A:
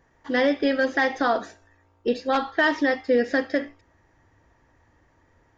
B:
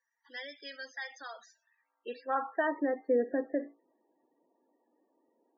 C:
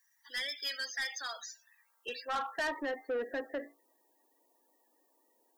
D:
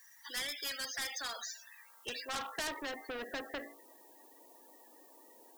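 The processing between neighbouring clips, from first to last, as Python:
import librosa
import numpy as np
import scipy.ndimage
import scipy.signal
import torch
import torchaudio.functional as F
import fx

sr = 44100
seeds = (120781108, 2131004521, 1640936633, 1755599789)

y1 = scipy.signal.sosfilt(scipy.signal.butter(4, 200.0, 'highpass', fs=sr, output='sos'), x)
y1 = fx.filter_sweep_bandpass(y1, sr, from_hz=6300.0, to_hz=390.0, start_s=1.44, end_s=2.91, q=0.89)
y1 = fx.spec_topn(y1, sr, count=32)
y1 = y1 * 10.0 ** (-6.0 / 20.0)
y2 = fx.tilt_eq(y1, sr, slope=5.0)
y2 = 10.0 ** (-33.0 / 20.0) * np.tanh(y2 / 10.0 ** (-33.0 / 20.0))
y2 = y2 * 10.0 ** (3.0 / 20.0)
y3 = fx.spectral_comp(y2, sr, ratio=2.0)
y3 = y3 * 10.0 ** (3.0 / 20.0)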